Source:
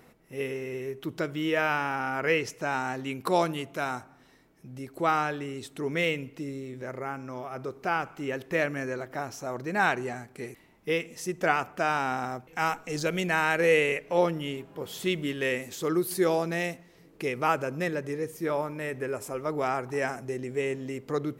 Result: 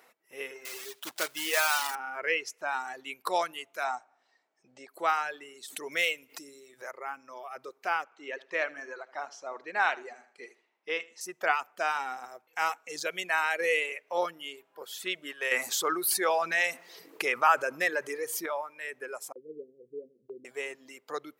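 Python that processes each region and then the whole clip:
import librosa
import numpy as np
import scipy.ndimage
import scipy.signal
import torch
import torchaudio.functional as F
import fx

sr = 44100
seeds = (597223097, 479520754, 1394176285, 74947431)

y = fx.chain(x, sr, fx.block_float(bits=3),
    fx.high_shelf(hz=2700.0, db=7.0), at=(0.65, 1.96))
y = fx.chain(y, sr, fx.steep_lowpass(hz=8400.0, slope=96),
    fx.peak_eq(hz=720.0, db=8.0, octaves=0.56), at=(3.84, 4.89))
y = fx.chain(y, sr, fx.high_shelf(hz=4200.0, db=10.0),
    fx.pre_swell(db_per_s=94.0), at=(5.68, 6.91))
y = fx.chain(y, sr, fx.bandpass_edges(low_hz=190.0, high_hz=6600.0),
    fx.air_absorb(metres=51.0),
    fx.echo_feedback(ms=77, feedback_pct=28, wet_db=-9.5), at=(8.04, 11.21))
y = fx.chain(y, sr, fx.dynamic_eq(hz=1300.0, q=1.0, threshold_db=-43.0, ratio=4.0, max_db=5),
    fx.env_flatten(amount_pct=50), at=(15.51, 18.46))
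y = fx.chain(y, sr, fx.steep_lowpass(hz=500.0, slope=96),
    fx.gate_hold(open_db=-29.0, close_db=-41.0, hold_ms=71.0, range_db=-21, attack_ms=1.4, release_ms=100.0), at=(19.32, 20.45))
y = fx.dereverb_blind(y, sr, rt60_s=1.6)
y = scipy.signal.sosfilt(scipy.signal.butter(2, 660.0, 'highpass', fs=sr, output='sos'), y)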